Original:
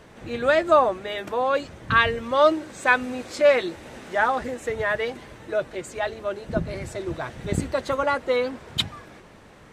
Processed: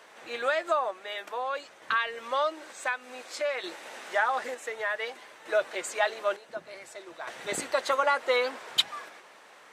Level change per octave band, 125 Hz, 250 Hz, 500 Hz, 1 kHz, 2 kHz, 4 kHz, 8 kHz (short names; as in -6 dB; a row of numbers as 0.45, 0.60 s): under -25 dB, -16.5 dB, -8.0 dB, -5.5 dB, -5.5 dB, -1.5 dB, +1.0 dB